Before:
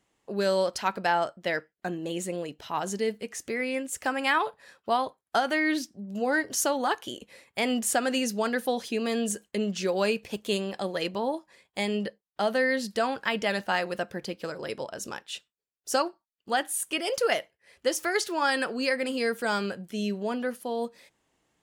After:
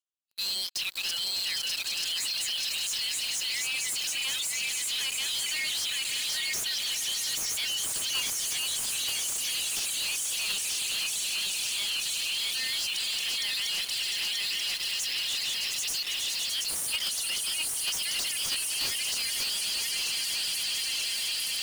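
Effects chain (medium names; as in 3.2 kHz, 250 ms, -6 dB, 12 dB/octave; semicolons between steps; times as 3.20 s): backward echo that repeats 467 ms, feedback 70%, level -2 dB; steep high-pass 2.8 kHz 36 dB/octave; on a send: echo with a slow build-up 101 ms, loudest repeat 8, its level -16.5 dB; on the sum: reverb removal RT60 0.69 s; waveshaping leveller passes 5; peak limiter -23.5 dBFS, peak gain reduction 8 dB; level held to a coarse grid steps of 9 dB; waveshaping leveller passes 2; de-esser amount 45%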